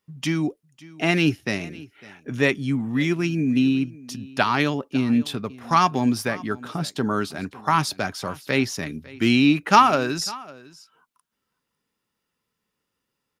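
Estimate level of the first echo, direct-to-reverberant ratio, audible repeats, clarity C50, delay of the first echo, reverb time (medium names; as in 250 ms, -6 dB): -21.0 dB, no reverb, 1, no reverb, 552 ms, no reverb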